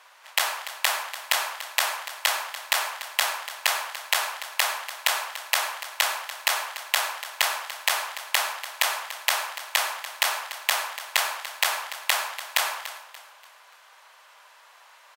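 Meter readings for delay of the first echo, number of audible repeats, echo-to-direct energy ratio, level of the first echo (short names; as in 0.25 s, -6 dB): 0.29 s, 3, -13.5 dB, -14.0 dB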